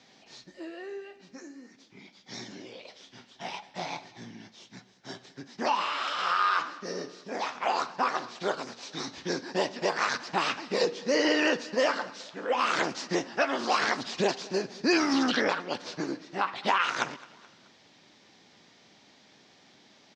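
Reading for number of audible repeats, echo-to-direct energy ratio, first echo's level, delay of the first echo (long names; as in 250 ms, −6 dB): 3, −21.0 dB, −22.0 dB, 214 ms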